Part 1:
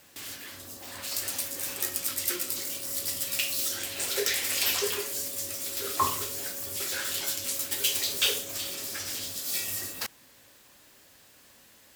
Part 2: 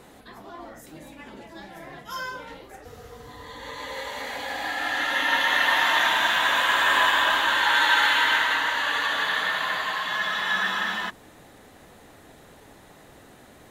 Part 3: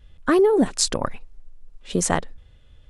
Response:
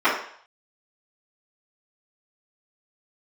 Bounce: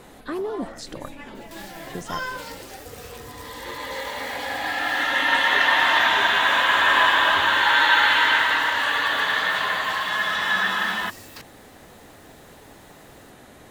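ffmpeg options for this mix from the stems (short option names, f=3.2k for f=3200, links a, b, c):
-filter_complex "[0:a]acrossover=split=380[a][b];[b]acompressor=threshold=-32dB:ratio=6[c];[a][c]amix=inputs=2:normalize=0,adelay=1350,volume=-2.5dB[d];[1:a]volume=3dB[e];[2:a]volume=-12dB[f];[d][e][f]amix=inputs=3:normalize=0,acrossover=split=5000[g][h];[h]acompressor=threshold=-44dB:ratio=4:attack=1:release=60[i];[g][i]amix=inputs=2:normalize=0"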